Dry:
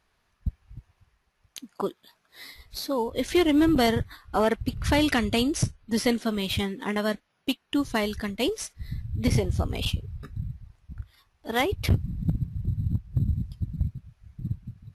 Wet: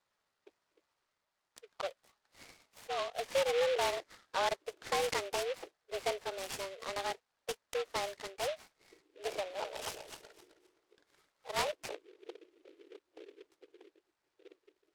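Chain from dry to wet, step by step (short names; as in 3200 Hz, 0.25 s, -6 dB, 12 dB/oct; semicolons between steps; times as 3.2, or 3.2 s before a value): 9.36–11.69 regenerating reverse delay 0.131 s, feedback 48%, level -4.5 dB; mistuned SSB +190 Hz 270–3400 Hz; noise-modulated delay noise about 2300 Hz, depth 0.083 ms; gain -9 dB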